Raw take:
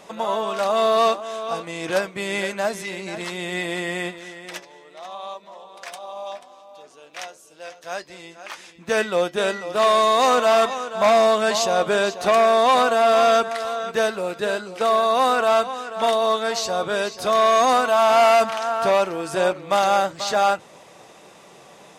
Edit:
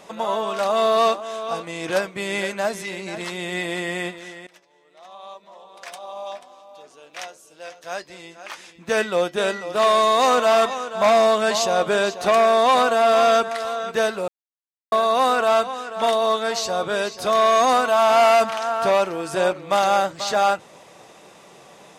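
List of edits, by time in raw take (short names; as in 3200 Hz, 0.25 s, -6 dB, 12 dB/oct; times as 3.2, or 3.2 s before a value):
4.47–6.13 fade in, from -22.5 dB
14.28–14.92 mute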